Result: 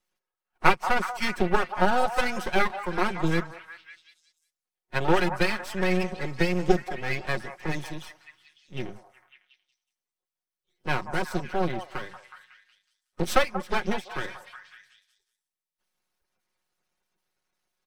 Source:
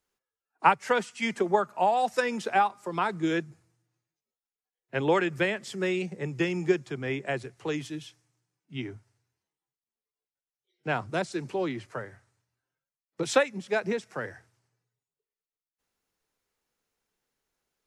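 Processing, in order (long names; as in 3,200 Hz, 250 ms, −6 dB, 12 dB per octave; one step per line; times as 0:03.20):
spectral magnitudes quantised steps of 30 dB
half-wave rectification
notch filter 7,000 Hz, Q 9.6
comb filter 5.5 ms, depth 54%
on a send: echo through a band-pass that steps 184 ms, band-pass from 860 Hz, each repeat 0.7 octaves, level −7 dB
on the sum: level +4.5 dB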